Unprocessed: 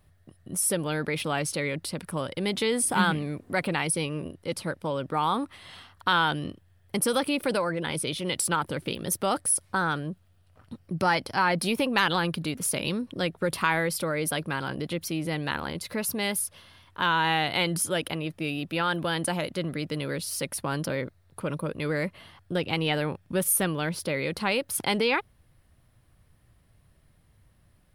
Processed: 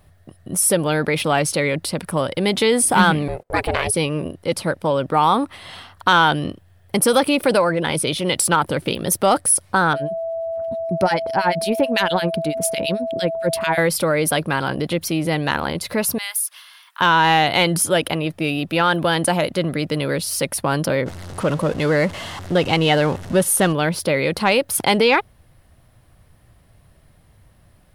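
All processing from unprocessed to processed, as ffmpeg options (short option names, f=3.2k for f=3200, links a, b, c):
-filter_complex "[0:a]asettb=1/sr,asplit=3[a][b][c];[a]atrim=end=3.284[d];[b]atrim=start=3.28:end=3.94,asetpts=PTS-STARTPTS,afade=t=in:d=0.004:c=qsin,afade=t=out:st=0.656:d=0.004:c=qsin,highpass=f=110:w=0.5412,highpass=f=110:w=1.3066,agate=range=-24dB:threshold=-48dB:ratio=16:release=100:detection=peak,aeval=exprs='val(0)*sin(2*PI*260*n/s)':c=same[e];[c]atrim=start=3.936[f];[d][e]acrossfade=d=0.004:c1=hsin:c2=qsin[g];[g][f]acrossfade=d=0.004:c1=qsin:c2=hsin,asettb=1/sr,asplit=3[h][i][j];[h]atrim=end=9.934[k];[i]atrim=start=9.93:end=13.78,asetpts=PTS-STARTPTS,afade=t=in:d=0.004:c=qsin,afade=t=out:st=3.846:d=0.004:c=qsin,equalizer=f=1.2k:t=o:w=0.3:g=-6.5,acrossover=split=1700[l][m];[l]aeval=exprs='val(0)*(1-1/2+1/2*cos(2*PI*9*n/s))':c=same[n];[m]aeval=exprs='val(0)*(1-1/2-1/2*cos(2*PI*9*n/s))':c=same[o];[n][o]amix=inputs=2:normalize=0,aeval=exprs='val(0)+0.0178*sin(2*PI*660*n/s)':c=same[p];[j]atrim=start=13.776[q];[k][p]acrossfade=d=0.004:c1=hsin:c2=qsin[r];[r][q]acrossfade=d=0.004:c1=qsin:c2=hsin,asettb=1/sr,asplit=3[s][t][u];[s]atrim=end=16.184[v];[t]atrim=start=16.18:end=17.01,asetpts=PTS-STARTPTS,afade=t=in:d=0.004:c=qsin,afade=t=out:st=0.826:d=0.004:c=qsin,acompressor=threshold=-36dB:ratio=2:attack=3.2:release=140:knee=1:detection=peak,highpass=f=1.1k:w=0.5412,highpass=f=1.1k:w=1.3066,highshelf=f=11k:g=11[w];[u]atrim=start=17.006[x];[v][w]acrossfade=d=0.004:c1=hsin:c2=qsin[y];[y][x]acrossfade=d=0.004:c1=qsin:c2=hsin,asettb=1/sr,asplit=3[z][aa][ab];[z]atrim=end=21.064[ac];[aa]atrim=start=21.06:end=23.73,asetpts=PTS-STARTPTS,afade=t=in:d=0.004:c=qsin,afade=t=out:st=2.666:d=0.004:c=qsin,aeval=exprs='val(0)+0.5*0.0141*sgn(val(0))':c=same,lowpass=9.4k,bandreject=f=2.4k:w=16[ad];[ab]atrim=start=23.726[ae];[ac][ad]acrossfade=d=0.004:c1=hsin:c2=qsin[af];[af][ae]acrossfade=d=0.004:c1=qsin:c2=hsin,equalizer=f=690:t=o:w=0.94:g=4,acontrast=80,volume=1.5dB"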